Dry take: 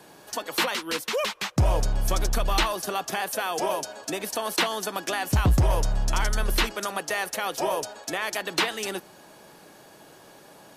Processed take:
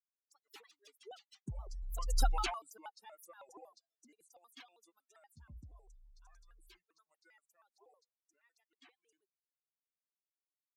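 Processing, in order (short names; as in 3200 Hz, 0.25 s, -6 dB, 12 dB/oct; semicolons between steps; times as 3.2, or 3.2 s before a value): per-bin expansion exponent 3; Doppler pass-by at 2.23, 22 m/s, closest 1.3 m; shaped vibrato square 6.3 Hz, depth 250 cents; gain +4.5 dB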